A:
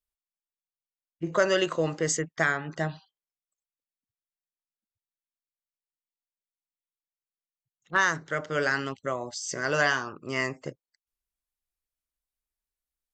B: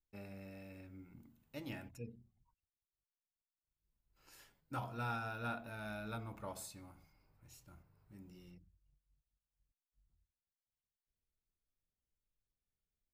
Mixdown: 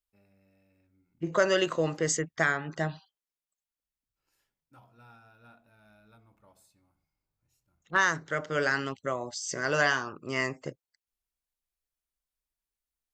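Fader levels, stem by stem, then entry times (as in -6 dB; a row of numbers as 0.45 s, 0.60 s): -1.0 dB, -15.0 dB; 0.00 s, 0.00 s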